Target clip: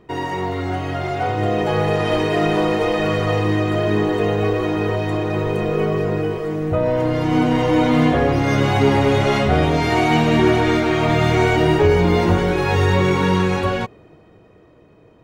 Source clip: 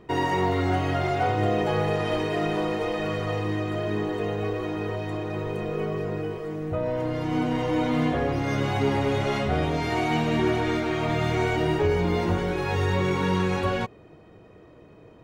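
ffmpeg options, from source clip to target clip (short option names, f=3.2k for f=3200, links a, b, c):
-af "dynaudnorm=f=110:g=31:m=9.5dB"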